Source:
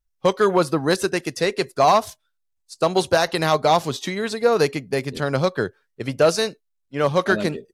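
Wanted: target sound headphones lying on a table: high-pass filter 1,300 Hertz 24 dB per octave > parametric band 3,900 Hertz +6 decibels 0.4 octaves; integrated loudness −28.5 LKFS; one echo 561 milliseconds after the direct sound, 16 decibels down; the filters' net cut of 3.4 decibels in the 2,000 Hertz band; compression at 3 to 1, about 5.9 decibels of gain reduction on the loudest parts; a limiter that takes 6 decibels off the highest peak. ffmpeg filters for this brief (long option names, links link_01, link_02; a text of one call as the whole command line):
ffmpeg -i in.wav -af "equalizer=frequency=2000:width_type=o:gain=-4,acompressor=threshold=-20dB:ratio=3,alimiter=limit=-15.5dB:level=0:latency=1,highpass=frequency=1300:width=0.5412,highpass=frequency=1300:width=1.3066,equalizer=frequency=3900:width_type=o:width=0.4:gain=6,aecho=1:1:561:0.158,volume=4.5dB" out.wav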